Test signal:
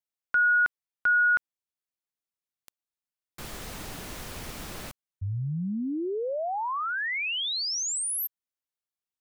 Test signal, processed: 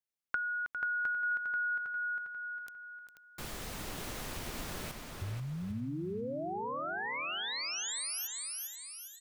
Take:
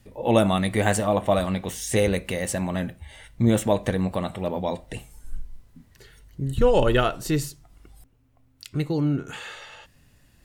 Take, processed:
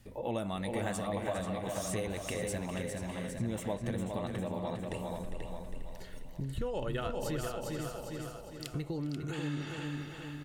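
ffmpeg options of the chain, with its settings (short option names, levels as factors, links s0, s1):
-filter_complex "[0:a]asplit=2[s0][s1];[s1]aecho=0:1:404|808|1212|1616:0.376|0.15|0.0601|0.0241[s2];[s0][s2]amix=inputs=2:normalize=0,acompressor=threshold=0.0141:ratio=3:attack=35:release=215:knee=1:detection=peak,asplit=2[s3][s4];[s4]adelay=486,lowpass=f=4500:p=1,volume=0.562,asplit=2[s5][s6];[s6]adelay=486,lowpass=f=4500:p=1,volume=0.17,asplit=2[s7][s8];[s8]adelay=486,lowpass=f=4500:p=1,volume=0.17[s9];[s5][s7][s9]amix=inputs=3:normalize=0[s10];[s3][s10]amix=inputs=2:normalize=0,volume=0.75"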